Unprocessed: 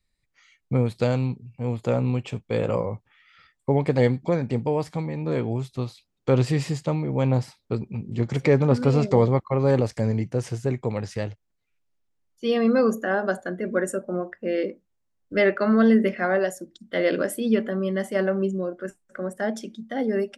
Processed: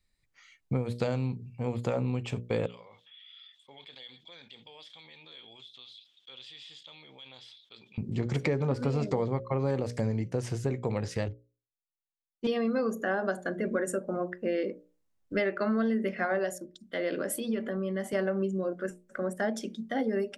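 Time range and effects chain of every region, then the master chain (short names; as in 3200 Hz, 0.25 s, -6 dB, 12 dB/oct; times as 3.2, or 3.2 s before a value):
2.66–7.98 band-pass 3400 Hz, Q 18 + fast leveller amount 70%
11.28–12.47 self-modulated delay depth 0.14 ms + tilt -3 dB/oct + upward expander 2.5:1, over -48 dBFS
16.58–18.13 compressor 2:1, threshold -31 dBFS + three-band expander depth 40%
whole clip: notches 60/120/180/240/300/360/420/480/540/600 Hz; compressor 5:1, threshold -26 dBFS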